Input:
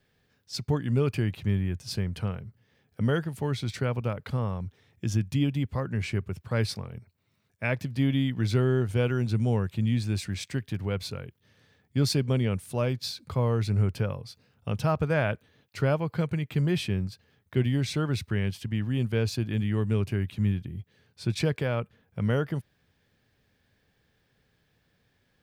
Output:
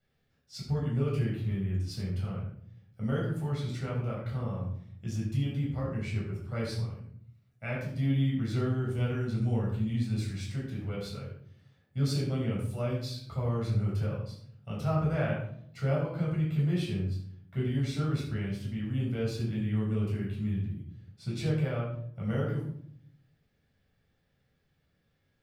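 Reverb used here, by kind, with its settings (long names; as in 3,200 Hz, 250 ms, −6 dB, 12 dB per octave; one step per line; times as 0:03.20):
rectangular room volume 1,000 cubic metres, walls furnished, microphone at 7 metres
level −14.5 dB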